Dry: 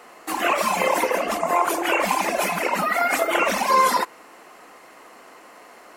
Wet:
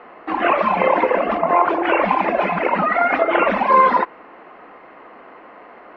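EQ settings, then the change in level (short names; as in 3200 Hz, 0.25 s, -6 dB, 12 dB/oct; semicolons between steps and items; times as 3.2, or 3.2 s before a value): LPF 2800 Hz 12 dB/oct; air absorption 360 m; +6.5 dB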